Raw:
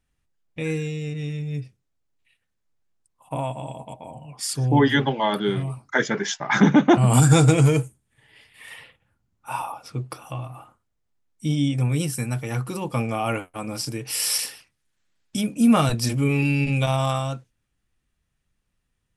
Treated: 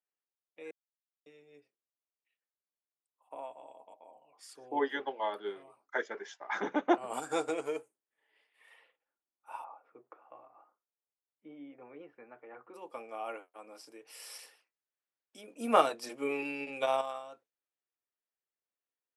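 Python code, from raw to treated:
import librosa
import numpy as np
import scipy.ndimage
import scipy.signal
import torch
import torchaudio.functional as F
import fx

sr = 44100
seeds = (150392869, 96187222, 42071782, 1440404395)

y = fx.lowpass(x, sr, hz=2100.0, slope=24, at=(9.64, 12.74))
y = fx.edit(y, sr, fx.silence(start_s=0.71, length_s=0.55),
    fx.clip_gain(start_s=15.48, length_s=1.53, db=6.0), tone=tone)
y = scipy.signal.sosfilt(scipy.signal.butter(4, 380.0, 'highpass', fs=sr, output='sos'), y)
y = fx.high_shelf(y, sr, hz=2500.0, db=-12.0)
y = fx.upward_expand(y, sr, threshold_db=-32.0, expansion=1.5)
y = F.gain(torch.from_numpy(y), -5.5).numpy()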